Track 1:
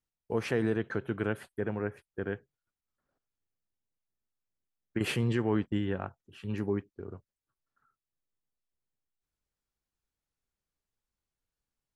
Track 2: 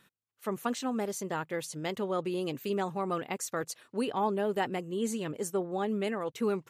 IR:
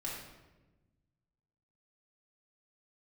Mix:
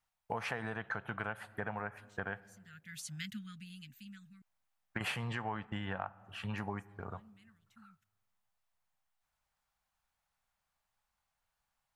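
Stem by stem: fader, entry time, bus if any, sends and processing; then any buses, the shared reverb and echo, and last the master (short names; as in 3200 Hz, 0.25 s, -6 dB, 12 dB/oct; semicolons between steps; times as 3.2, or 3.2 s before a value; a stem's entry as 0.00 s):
0.0 dB, 0.00 s, send -21 dB, EQ curve 190 Hz 0 dB, 360 Hz -11 dB, 760 Hz +13 dB, 5300 Hz +3 dB
-2.0 dB, 1.35 s, muted 4.42–6.53, no send, Chebyshev band-stop 220–1500 Hz, order 4; auto duck -24 dB, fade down 1.75 s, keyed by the first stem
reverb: on, RT60 1.1 s, pre-delay 3 ms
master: compressor 6:1, threshold -35 dBFS, peak gain reduction 13.5 dB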